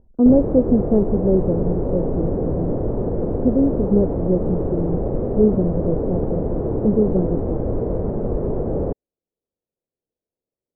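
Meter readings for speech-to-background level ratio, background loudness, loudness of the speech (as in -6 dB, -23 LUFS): 3.0 dB, -24.0 LUFS, -21.0 LUFS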